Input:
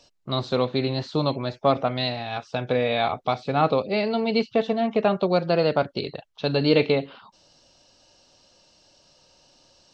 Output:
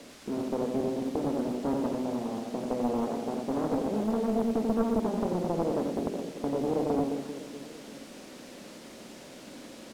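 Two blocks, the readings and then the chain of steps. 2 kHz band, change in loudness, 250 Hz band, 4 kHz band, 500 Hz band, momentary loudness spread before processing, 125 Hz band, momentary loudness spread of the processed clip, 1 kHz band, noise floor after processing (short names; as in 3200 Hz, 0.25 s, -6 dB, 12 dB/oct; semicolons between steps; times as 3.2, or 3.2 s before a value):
-16.0 dB, -6.5 dB, -1.5 dB, -17.0 dB, -7.5 dB, 9 LU, -10.0 dB, 18 LU, -9.0 dB, -48 dBFS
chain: per-bin compression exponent 0.6; notches 50/100/150/200/250/300 Hz; in parallel at +0.5 dB: compressor 6:1, threshold -29 dBFS, peak gain reduction 16 dB; on the sum: ladder band-pass 270 Hz, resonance 50%; requantised 8-bit, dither triangular; air absorption 55 m; reverse bouncing-ball echo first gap 90 ms, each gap 1.4×, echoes 5; Doppler distortion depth 0.94 ms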